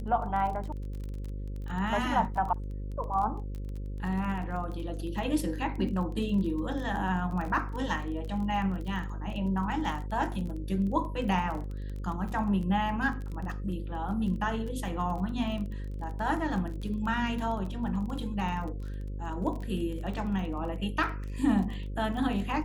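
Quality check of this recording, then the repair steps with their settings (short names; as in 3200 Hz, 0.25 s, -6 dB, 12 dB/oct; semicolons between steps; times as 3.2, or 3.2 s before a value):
buzz 50 Hz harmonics 11 -36 dBFS
crackle 25/s -36 dBFS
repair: de-click; de-hum 50 Hz, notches 11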